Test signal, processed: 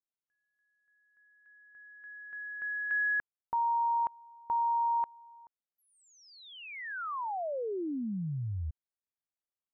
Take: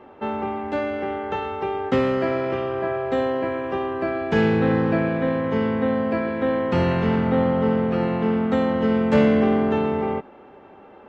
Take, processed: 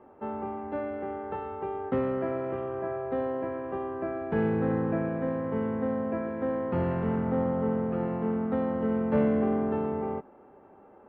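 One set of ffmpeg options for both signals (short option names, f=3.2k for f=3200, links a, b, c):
-af "lowpass=1.4k,volume=-7.5dB"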